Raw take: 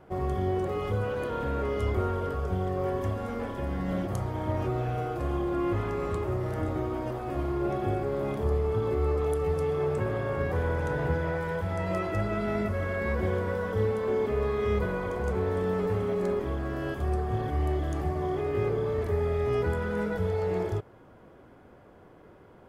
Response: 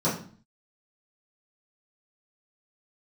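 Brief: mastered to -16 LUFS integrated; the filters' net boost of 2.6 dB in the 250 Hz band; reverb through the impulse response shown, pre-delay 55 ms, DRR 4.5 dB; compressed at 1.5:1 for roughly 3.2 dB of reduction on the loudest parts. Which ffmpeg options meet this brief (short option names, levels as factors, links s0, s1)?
-filter_complex "[0:a]equalizer=f=250:t=o:g=4,acompressor=threshold=0.0282:ratio=1.5,asplit=2[s0][s1];[1:a]atrim=start_sample=2205,adelay=55[s2];[s1][s2]afir=irnorm=-1:irlink=0,volume=0.141[s3];[s0][s3]amix=inputs=2:normalize=0,volume=3.76"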